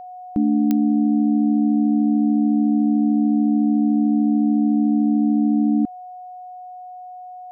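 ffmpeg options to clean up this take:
ffmpeg -i in.wav -af "adeclick=threshold=4,bandreject=frequency=730:width=30" out.wav

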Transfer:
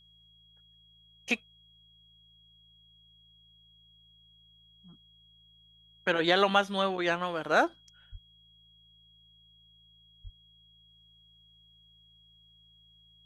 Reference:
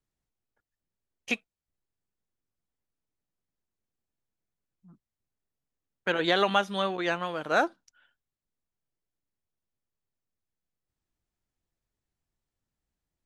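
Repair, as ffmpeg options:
ffmpeg -i in.wav -filter_complex "[0:a]bandreject=frequency=54.8:width_type=h:width=4,bandreject=frequency=109.6:width_type=h:width=4,bandreject=frequency=164.4:width_type=h:width=4,bandreject=frequency=3300:width=30,asplit=3[link_01][link_02][link_03];[link_01]afade=type=out:start_time=8.11:duration=0.02[link_04];[link_02]highpass=frequency=140:width=0.5412,highpass=frequency=140:width=1.3066,afade=type=in:start_time=8.11:duration=0.02,afade=type=out:start_time=8.23:duration=0.02[link_05];[link_03]afade=type=in:start_time=8.23:duration=0.02[link_06];[link_04][link_05][link_06]amix=inputs=3:normalize=0,asplit=3[link_07][link_08][link_09];[link_07]afade=type=out:start_time=10.23:duration=0.02[link_10];[link_08]highpass=frequency=140:width=0.5412,highpass=frequency=140:width=1.3066,afade=type=in:start_time=10.23:duration=0.02,afade=type=out:start_time=10.35:duration=0.02[link_11];[link_09]afade=type=in:start_time=10.35:duration=0.02[link_12];[link_10][link_11][link_12]amix=inputs=3:normalize=0" out.wav

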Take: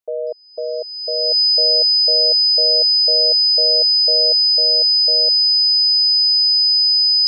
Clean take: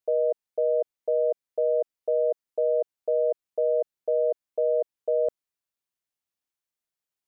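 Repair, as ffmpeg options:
ffmpeg -i in.wav -af "bandreject=frequency=5000:width=30,asetnsamples=nb_out_samples=441:pad=0,asendcmd='4.41 volume volume 3.5dB',volume=0dB" out.wav

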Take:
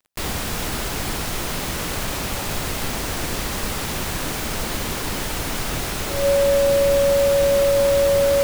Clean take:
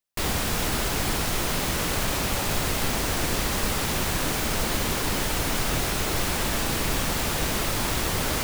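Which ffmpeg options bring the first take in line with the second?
ffmpeg -i in.wav -af "adeclick=threshold=4,bandreject=frequency=560:width=30" out.wav

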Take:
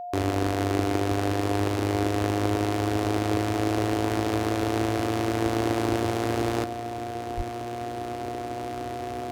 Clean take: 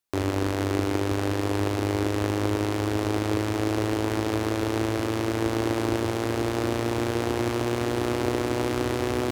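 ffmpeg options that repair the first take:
ffmpeg -i in.wav -filter_complex "[0:a]bandreject=frequency=710:width=30,asplit=3[link_01][link_02][link_03];[link_01]afade=type=out:start_time=7.36:duration=0.02[link_04];[link_02]highpass=frequency=140:width=0.5412,highpass=frequency=140:width=1.3066,afade=type=in:start_time=7.36:duration=0.02,afade=type=out:start_time=7.48:duration=0.02[link_05];[link_03]afade=type=in:start_time=7.48:duration=0.02[link_06];[link_04][link_05][link_06]amix=inputs=3:normalize=0,asetnsamples=nb_out_samples=441:pad=0,asendcmd='6.64 volume volume 9.5dB',volume=0dB" out.wav

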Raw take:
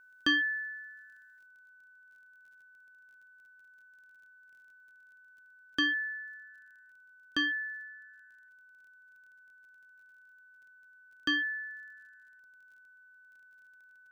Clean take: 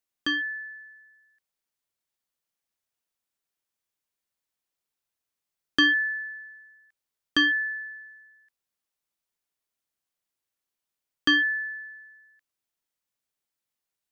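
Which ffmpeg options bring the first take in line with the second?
ffmpeg -i in.wav -af "adeclick=threshold=4,bandreject=frequency=1500:width=30,asetnsamples=nb_out_samples=441:pad=0,asendcmd='1.46 volume volume 8.5dB',volume=0dB" out.wav

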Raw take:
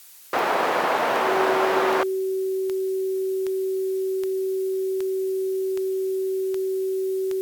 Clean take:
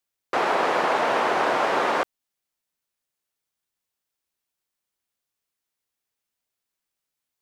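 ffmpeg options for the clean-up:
ffmpeg -i in.wav -af "adeclick=threshold=4,bandreject=frequency=380:width=30,afftdn=noise_reduction=30:noise_floor=-25" out.wav

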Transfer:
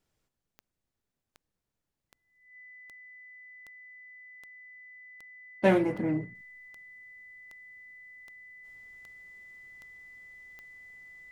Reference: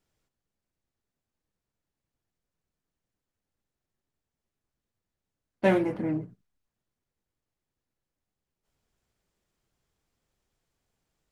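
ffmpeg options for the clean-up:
ffmpeg -i in.wav -af "adeclick=threshold=4,bandreject=frequency=2000:width=30,asetnsamples=nb_out_samples=441:pad=0,asendcmd='6.35 volume volume -10.5dB',volume=0dB" out.wav

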